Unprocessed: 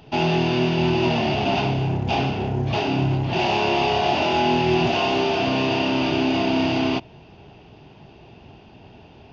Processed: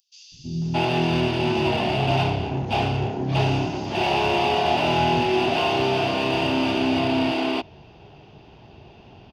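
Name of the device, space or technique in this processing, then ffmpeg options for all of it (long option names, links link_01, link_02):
exciter from parts: -filter_complex "[0:a]acrossover=split=230|5700[link_01][link_02][link_03];[link_01]adelay=320[link_04];[link_02]adelay=620[link_05];[link_04][link_05][link_03]amix=inputs=3:normalize=0,asplit=2[link_06][link_07];[link_07]highpass=frequency=2100:poles=1,asoftclip=type=tanh:threshold=-34.5dB,highpass=2200,volume=-5.5dB[link_08];[link_06][link_08]amix=inputs=2:normalize=0"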